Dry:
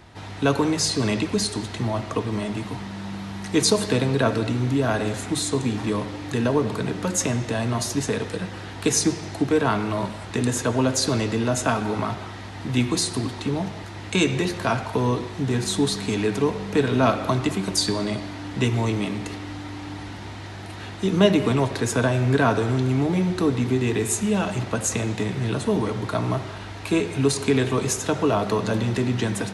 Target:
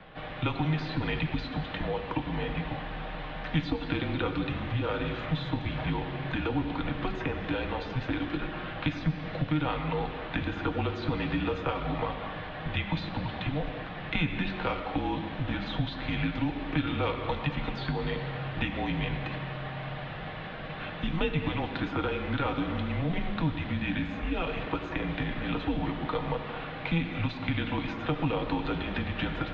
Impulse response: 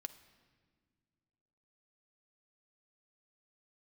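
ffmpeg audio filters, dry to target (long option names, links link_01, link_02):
-filter_complex "[0:a]acrossover=split=290|2700[link_01][link_02][link_03];[link_01]acompressor=threshold=-37dB:ratio=4[link_04];[link_02]acompressor=threshold=-31dB:ratio=4[link_05];[link_03]acompressor=threshold=-34dB:ratio=4[link_06];[link_04][link_05][link_06]amix=inputs=3:normalize=0[link_07];[1:a]atrim=start_sample=2205,asetrate=22932,aresample=44100[link_08];[link_07][link_08]afir=irnorm=-1:irlink=0,highpass=frequency=170:width_type=q:width=0.5412,highpass=frequency=170:width_type=q:width=1.307,lowpass=frequency=3600:width_type=q:width=0.5176,lowpass=frequency=3600:width_type=q:width=0.7071,lowpass=frequency=3600:width_type=q:width=1.932,afreqshift=-160,volume=1.5dB"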